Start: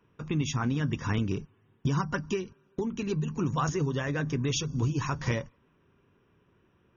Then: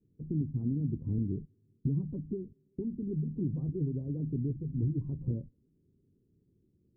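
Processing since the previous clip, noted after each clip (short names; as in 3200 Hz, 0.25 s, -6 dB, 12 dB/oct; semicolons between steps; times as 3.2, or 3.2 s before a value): inverse Chebyshev low-pass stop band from 2100 Hz, stop band 80 dB; gain -2.5 dB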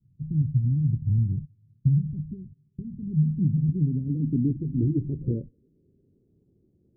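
low-pass sweep 130 Hz -> 690 Hz, 2.89–6.31; gain +4.5 dB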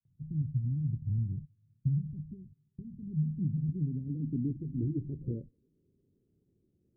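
gate with hold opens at -58 dBFS; gain -8.5 dB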